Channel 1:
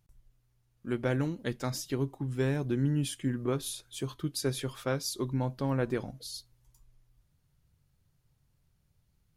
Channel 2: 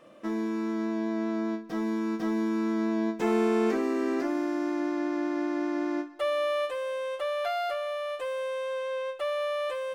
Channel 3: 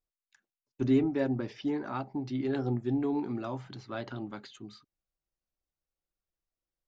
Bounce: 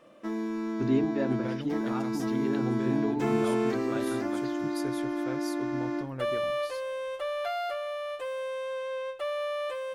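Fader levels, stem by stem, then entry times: -8.5 dB, -2.0 dB, -1.0 dB; 0.40 s, 0.00 s, 0.00 s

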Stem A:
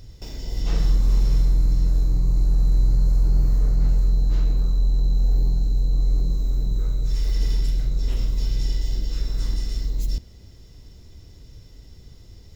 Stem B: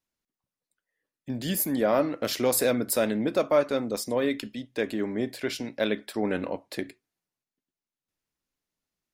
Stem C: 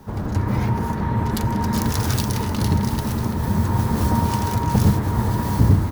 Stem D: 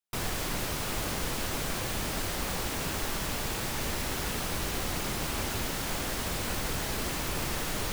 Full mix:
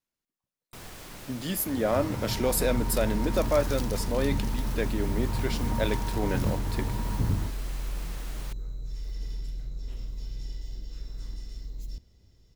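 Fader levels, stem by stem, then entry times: -13.5 dB, -2.5 dB, -12.5 dB, -11.5 dB; 1.80 s, 0.00 s, 1.60 s, 0.60 s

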